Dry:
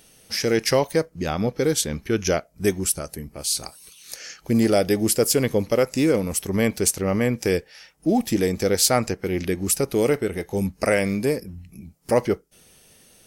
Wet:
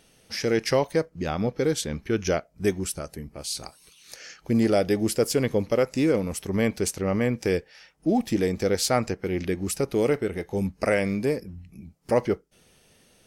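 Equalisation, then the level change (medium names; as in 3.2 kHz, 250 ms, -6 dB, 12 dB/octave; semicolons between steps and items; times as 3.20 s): treble shelf 7.4 kHz -11.5 dB; -2.5 dB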